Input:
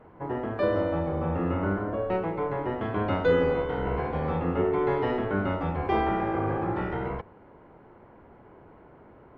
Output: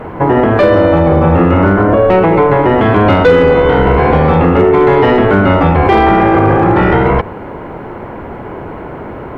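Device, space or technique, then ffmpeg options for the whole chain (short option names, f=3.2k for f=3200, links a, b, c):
mastering chain: -af "equalizer=f=2.4k:t=o:w=0.77:g=2,acompressor=threshold=-28dB:ratio=2,asoftclip=type=tanh:threshold=-20dB,asoftclip=type=hard:threshold=-23.5dB,alimiter=level_in=27.5dB:limit=-1dB:release=50:level=0:latency=1,volume=-1dB"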